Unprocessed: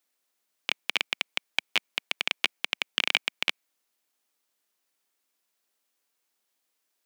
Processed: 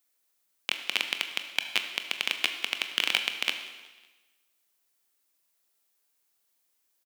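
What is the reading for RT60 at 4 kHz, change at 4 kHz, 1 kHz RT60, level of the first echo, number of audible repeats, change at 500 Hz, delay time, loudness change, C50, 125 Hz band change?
1.2 s, 0.0 dB, 1.2 s, -20.5 dB, 3, -1.0 dB, 0.185 s, -0.5 dB, 8.0 dB, n/a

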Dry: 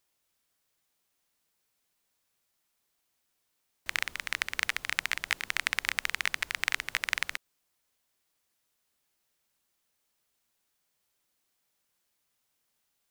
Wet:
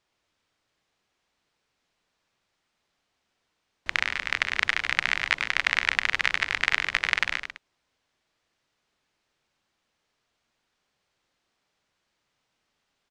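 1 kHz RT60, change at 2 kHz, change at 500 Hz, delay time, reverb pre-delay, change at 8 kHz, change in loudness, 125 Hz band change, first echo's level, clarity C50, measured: none, +7.0 dB, +7.5 dB, 0.1 s, none, -2.5 dB, +6.0 dB, +8.0 dB, -7.5 dB, none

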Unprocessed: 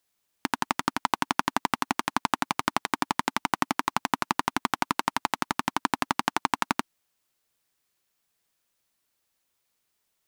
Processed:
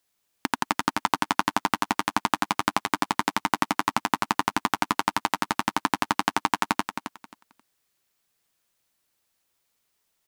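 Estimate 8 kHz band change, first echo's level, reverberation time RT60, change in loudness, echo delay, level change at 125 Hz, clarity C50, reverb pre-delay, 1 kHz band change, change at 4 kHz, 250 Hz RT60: +2.0 dB, -8.5 dB, none, +2.0 dB, 0.267 s, +2.0 dB, none, none, +2.0 dB, +2.0 dB, none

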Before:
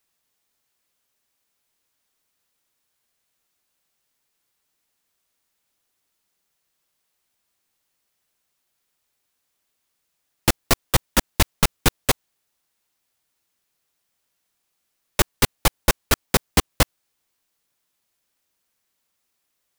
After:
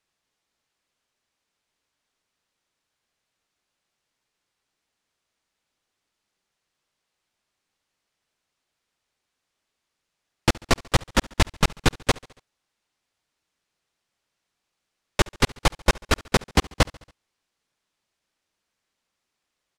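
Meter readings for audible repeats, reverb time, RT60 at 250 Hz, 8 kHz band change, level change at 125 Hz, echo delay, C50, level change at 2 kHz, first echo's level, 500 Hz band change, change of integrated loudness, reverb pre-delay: 3, none, none, -6.5 dB, 0.0 dB, 70 ms, none, -0.5 dB, -23.0 dB, 0.0 dB, -2.0 dB, none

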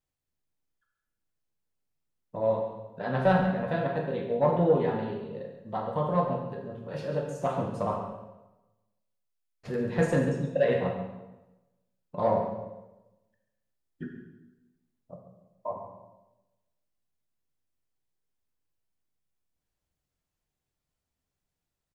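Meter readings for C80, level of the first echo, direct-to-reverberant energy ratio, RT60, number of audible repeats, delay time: 6.0 dB, -12.0 dB, 0.5 dB, 1.0 s, 1, 0.138 s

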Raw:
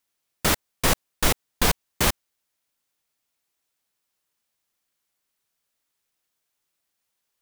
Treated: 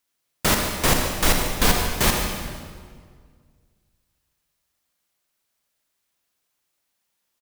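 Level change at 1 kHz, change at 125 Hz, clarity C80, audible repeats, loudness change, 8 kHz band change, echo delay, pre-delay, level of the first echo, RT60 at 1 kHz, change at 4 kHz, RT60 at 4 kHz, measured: +3.5 dB, +4.0 dB, 4.0 dB, 1, +2.5 dB, +3.0 dB, 0.148 s, 36 ms, -12.0 dB, 1.7 s, +3.0 dB, 1.4 s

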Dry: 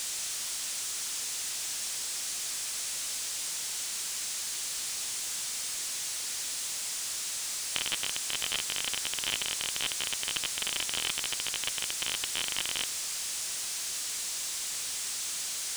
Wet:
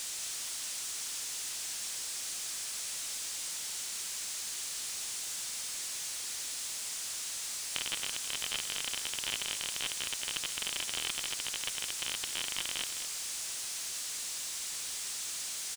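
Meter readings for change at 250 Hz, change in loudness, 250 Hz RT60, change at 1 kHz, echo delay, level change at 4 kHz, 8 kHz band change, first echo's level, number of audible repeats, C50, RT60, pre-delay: -3.5 dB, -3.5 dB, none, -3.5 dB, 0.211 s, -3.5 dB, -3.5 dB, -10.0 dB, 1, none, none, none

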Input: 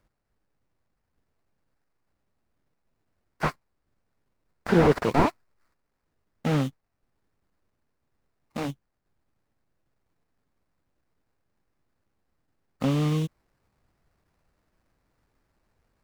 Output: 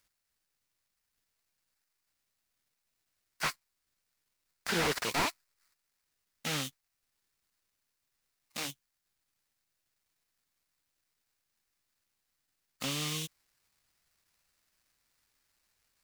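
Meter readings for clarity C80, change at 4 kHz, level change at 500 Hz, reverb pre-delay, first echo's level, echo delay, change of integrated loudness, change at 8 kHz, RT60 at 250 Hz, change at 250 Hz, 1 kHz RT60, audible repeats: none, +5.0 dB, -13.5 dB, none, none, none, -8.5 dB, +8.5 dB, none, -15.0 dB, none, none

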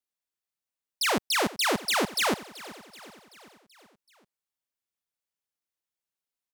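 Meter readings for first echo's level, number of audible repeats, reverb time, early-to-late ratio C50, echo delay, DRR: -18.0 dB, 4, none, none, 0.381 s, none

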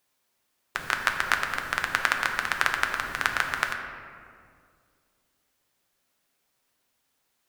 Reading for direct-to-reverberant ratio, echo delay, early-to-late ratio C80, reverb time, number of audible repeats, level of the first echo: 3.0 dB, none, 6.5 dB, 2.1 s, none, none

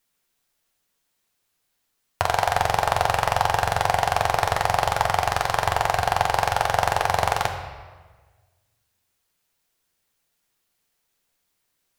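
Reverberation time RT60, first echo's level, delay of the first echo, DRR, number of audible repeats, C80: 1.4 s, none, none, 3.0 dB, none, 8.0 dB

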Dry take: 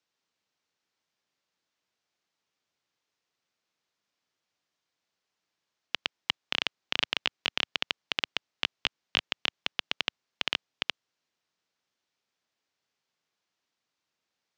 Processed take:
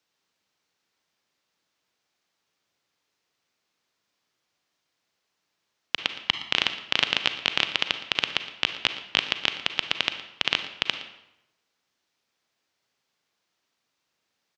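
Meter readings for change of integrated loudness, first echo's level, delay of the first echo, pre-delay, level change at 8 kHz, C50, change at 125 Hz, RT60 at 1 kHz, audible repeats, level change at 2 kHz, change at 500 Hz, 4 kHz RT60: +6.0 dB, -17.0 dB, 0.116 s, 33 ms, +6.0 dB, 9.5 dB, +6.0 dB, 0.90 s, 1, +6.0 dB, +6.0 dB, 0.70 s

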